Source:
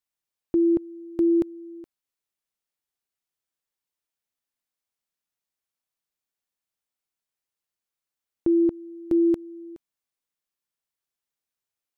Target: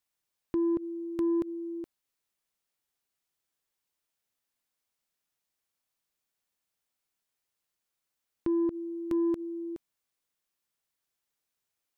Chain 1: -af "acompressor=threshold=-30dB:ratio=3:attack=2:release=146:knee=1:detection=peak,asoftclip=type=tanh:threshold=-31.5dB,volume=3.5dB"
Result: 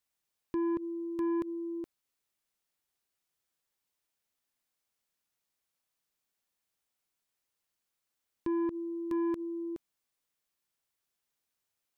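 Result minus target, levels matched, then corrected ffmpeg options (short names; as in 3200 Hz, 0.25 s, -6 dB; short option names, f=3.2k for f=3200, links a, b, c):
soft clip: distortion +9 dB
-af "acompressor=threshold=-30dB:ratio=3:attack=2:release=146:knee=1:detection=peak,asoftclip=type=tanh:threshold=-25dB,volume=3.5dB"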